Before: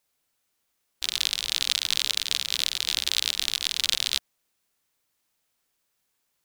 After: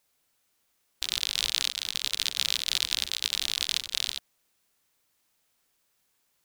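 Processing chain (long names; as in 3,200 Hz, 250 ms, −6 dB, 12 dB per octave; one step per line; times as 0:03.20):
compressor whose output falls as the input rises −30 dBFS, ratio −0.5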